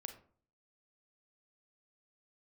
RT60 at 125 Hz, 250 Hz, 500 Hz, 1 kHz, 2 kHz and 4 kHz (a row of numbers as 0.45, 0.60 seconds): 0.65, 0.60, 0.50, 0.45, 0.35, 0.25 seconds